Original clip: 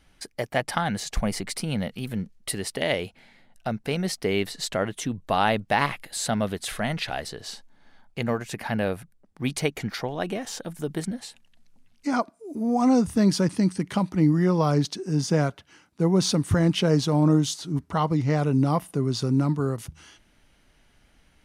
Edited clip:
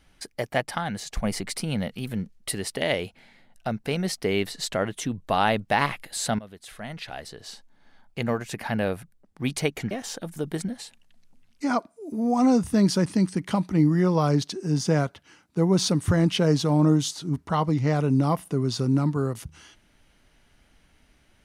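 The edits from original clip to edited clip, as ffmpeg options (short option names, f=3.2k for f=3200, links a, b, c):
-filter_complex "[0:a]asplit=5[a][b][c][d][e];[a]atrim=end=0.612[f];[b]atrim=start=0.608:end=1.242,asetpts=PTS-STARTPTS,volume=-3.5dB[g];[c]atrim=start=1.238:end=6.39,asetpts=PTS-STARTPTS,afade=t=out:st=5.148:d=0.004:c=hsin:silence=0.112202[h];[d]atrim=start=6.39:end=9.912,asetpts=PTS-STARTPTS,afade=t=in:d=1.85:silence=0.112202[i];[e]atrim=start=10.338[j];[f][g]acrossfade=d=0.004:c1=hsin:c2=hsin[k];[h][i]concat=n=2:v=0:a=1[l];[k][l]acrossfade=d=0.004:c1=hsin:c2=hsin[m];[m][j]acrossfade=d=0.004:c1=hsin:c2=hsin"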